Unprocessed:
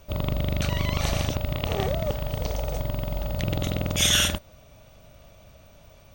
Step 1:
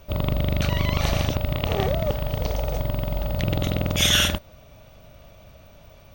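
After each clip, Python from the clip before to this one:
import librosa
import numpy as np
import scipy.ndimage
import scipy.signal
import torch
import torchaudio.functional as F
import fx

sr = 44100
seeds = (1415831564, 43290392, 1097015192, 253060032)

y = fx.peak_eq(x, sr, hz=8100.0, db=-6.5, octaves=0.93)
y = y * librosa.db_to_amplitude(3.0)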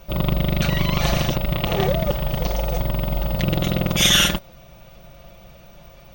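y = x + 0.72 * np.pad(x, (int(5.7 * sr / 1000.0), 0))[:len(x)]
y = y * librosa.db_to_amplitude(2.0)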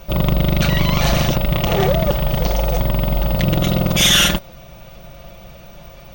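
y = 10.0 ** (-13.5 / 20.0) * np.tanh(x / 10.0 ** (-13.5 / 20.0))
y = y * librosa.db_to_amplitude(6.0)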